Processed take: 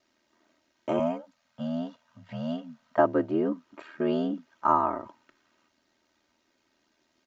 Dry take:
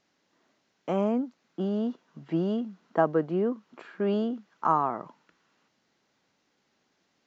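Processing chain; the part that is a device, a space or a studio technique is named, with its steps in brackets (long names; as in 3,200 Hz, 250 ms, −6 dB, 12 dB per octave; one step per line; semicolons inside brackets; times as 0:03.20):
0:00.99–0:02.99: elliptic band-stop filter 210–510 Hz
ring-modulated robot voice (ring modulation 40 Hz; comb filter 3.2 ms, depth 61%)
level +2.5 dB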